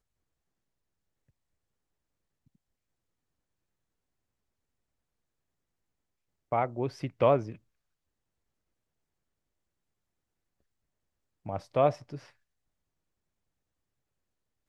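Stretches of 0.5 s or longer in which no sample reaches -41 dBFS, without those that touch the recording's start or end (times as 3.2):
7.55–11.46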